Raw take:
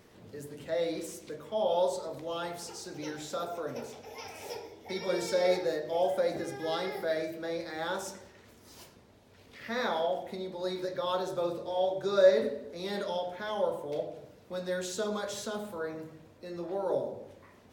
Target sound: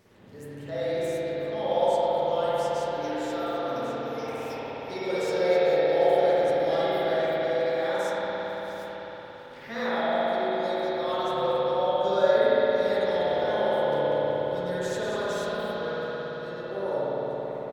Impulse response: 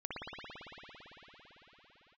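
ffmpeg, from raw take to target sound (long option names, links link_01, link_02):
-filter_complex "[0:a]asplit=3[link_01][link_02][link_03];[link_01]afade=type=out:start_time=13.09:duration=0.02[link_04];[link_02]asplit=5[link_05][link_06][link_07][link_08][link_09];[link_06]adelay=190,afreqshift=-31,volume=-7dB[link_10];[link_07]adelay=380,afreqshift=-62,volume=-16.1dB[link_11];[link_08]adelay=570,afreqshift=-93,volume=-25.2dB[link_12];[link_09]adelay=760,afreqshift=-124,volume=-34.4dB[link_13];[link_05][link_10][link_11][link_12][link_13]amix=inputs=5:normalize=0,afade=type=in:start_time=13.09:duration=0.02,afade=type=out:start_time=15.34:duration=0.02[link_14];[link_03]afade=type=in:start_time=15.34:duration=0.02[link_15];[link_04][link_14][link_15]amix=inputs=3:normalize=0[link_16];[1:a]atrim=start_sample=2205[link_17];[link_16][link_17]afir=irnorm=-1:irlink=0,volume=2.5dB"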